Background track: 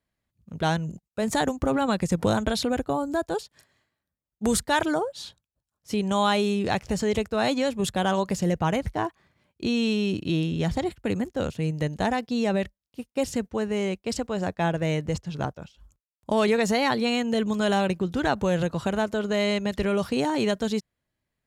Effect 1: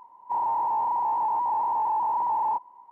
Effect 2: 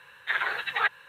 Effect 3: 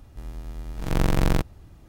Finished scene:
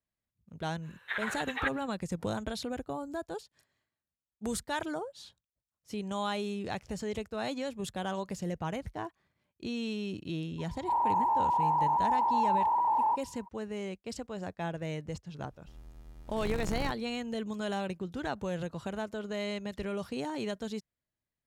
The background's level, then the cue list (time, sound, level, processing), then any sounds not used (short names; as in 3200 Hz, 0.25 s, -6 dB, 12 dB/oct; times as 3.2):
background track -11 dB
0.81 add 2 -7.5 dB, fades 0.05 s
10.58 add 1 -2 dB
15.5 add 3 -15 dB